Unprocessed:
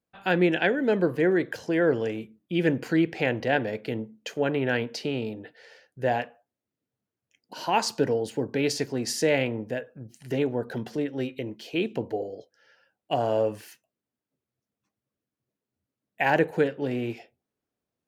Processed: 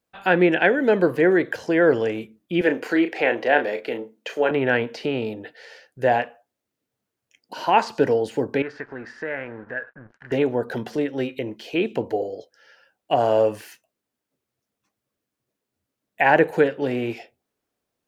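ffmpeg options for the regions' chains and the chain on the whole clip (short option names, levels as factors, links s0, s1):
-filter_complex "[0:a]asettb=1/sr,asplit=3[s0][s1][s2];[s0]atrim=end=2.614[s3];[s1]atrim=start=2.61:end=4.51,asetpts=PTS-STARTPTS,afade=t=in:d=0.004:c=qsin,afade=t=out:st=1.896:d=0.004:c=qsin,highpass=320,asplit=2[s4][s5];[s5]adelay=34,volume=0.355[s6];[s4][s6]amix=inputs=2:normalize=0,atrim=end_sample=83790[s7];[s2]atrim=start=4.506[s8];[s3][s7]acrossfade=d=0.004:c1=hsin:c2=qsin[s9];[s9][s8]acrossfade=d=0.004:c1=qsin:c2=hsin,asettb=1/sr,asplit=3[s10][s11][s12];[s10]atrim=end=8.624[s13];[s11]atrim=start=8.62:end=10.32,asetpts=PTS-STARTPTS,afade=t=in:d=0.004:c=qsin,afade=t=out:st=1.696:d=0.004:c=qsin,acompressor=threshold=0.00631:ratio=2:attack=3.2:release=140:knee=1:detection=peak,aeval=exprs='sgn(val(0))*max(abs(val(0))-0.00158,0)':c=same,lowpass=f=1600:t=q:w=6.6[s14];[s12]atrim=start=10.316[s15];[s13][s14]acrossfade=d=0.004:c1=hsin:c2=qsin[s16];[s16][s15]acrossfade=d=0.004:c1=qsin:c2=hsin,acrossover=split=2800[s17][s18];[s18]acompressor=threshold=0.00316:ratio=4:attack=1:release=60[s19];[s17][s19]amix=inputs=2:normalize=0,equalizer=f=140:w=0.56:g=-6.5,volume=2.37"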